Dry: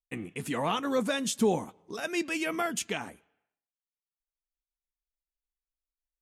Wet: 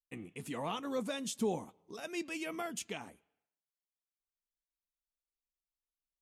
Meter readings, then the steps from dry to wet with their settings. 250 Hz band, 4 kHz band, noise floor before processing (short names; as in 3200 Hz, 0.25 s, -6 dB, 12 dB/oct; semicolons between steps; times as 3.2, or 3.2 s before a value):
-8.0 dB, -8.5 dB, under -85 dBFS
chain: bell 1600 Hz -4.5 dB 0.62 oct; gain -8 dB